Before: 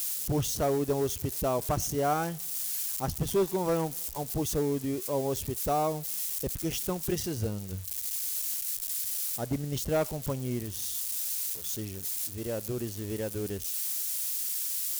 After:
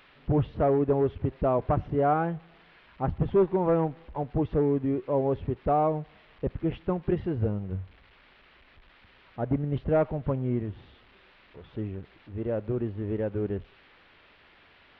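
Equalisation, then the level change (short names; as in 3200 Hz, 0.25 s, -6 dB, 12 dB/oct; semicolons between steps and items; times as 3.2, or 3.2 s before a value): Gaussian blur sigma 4.2 samples; +4.5 dB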